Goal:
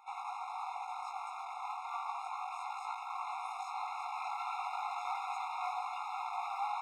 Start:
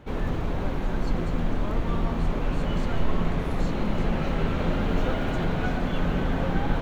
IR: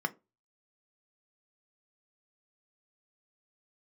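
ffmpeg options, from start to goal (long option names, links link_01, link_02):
-filter_complex "[0:a]aresample=22050,aresample=44100,acrossover=split=110[link_01][link_02];[link_01]alimiter=limit=-22dB:level=0:latency=1:release=268[link_03];[link_02]equalizer=frequency=3100:width=0.46:gain=-9.5[link_04];[link_03][link_04]amix=inputs=2:normalize=0,volume=26dB,asoftclip=hard,volume=-26dB,flanger=delay=17.5:depth=4.1:speed=0.33,areverse,acompressor=mode=upward:threshold=-38dB:ratio=2.5,areverse,afftfilt=real='re*eq(mod(floor(b*sr/1024/700),2),1)':imag='im*eq(mod(floor(b*sr/1024/700),2),1)':win_size=1024:overlap=0.75,volume=7.5dB"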